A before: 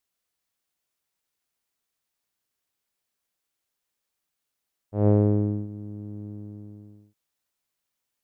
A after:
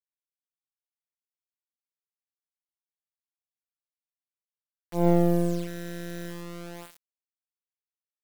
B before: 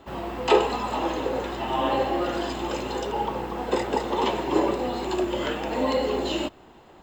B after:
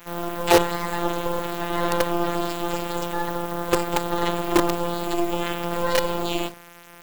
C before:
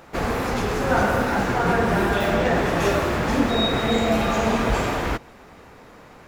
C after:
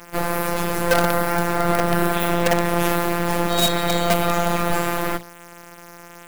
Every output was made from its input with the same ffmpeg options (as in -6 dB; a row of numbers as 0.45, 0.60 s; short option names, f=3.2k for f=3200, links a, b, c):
-filter_complex "[0:a]bandreject=f=60:t=h:w=6,bandreject=f=120:t=h:w=6,bandreject=f=180:t=h:w=6,bandreject=f=240:t=h:w=6,bandreject=f=300:t=h:w=6,afftfilt=real='hypot(re,im)*cos(PI*b)':imag='0':win_size=1024:overlap=0.75,aexciter=amount=5.3:drive=2.6:freq=8.7k,asplit=2[a][b];[b]asoftclip=type=tanh:threshold=-22dB,volume=-5dB[c];[a][c]amix=inputs=2:normalize=0,acrusher=bits=4:dc=4:mix=0:aa=0.000001,volume=3.5dB"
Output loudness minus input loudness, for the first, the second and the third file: -2.5, +1.5, +1.0 LU